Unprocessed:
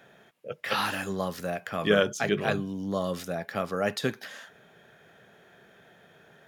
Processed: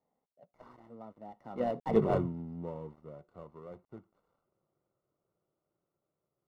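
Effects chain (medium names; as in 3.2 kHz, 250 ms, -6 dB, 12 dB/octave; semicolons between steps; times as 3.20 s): dead-time distortion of 0.2 ms; Doppler pass-by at 2.03 s, 54 m/s, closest 6.5 m; Savitzky-Golay filter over 65 samples; trim +3 dB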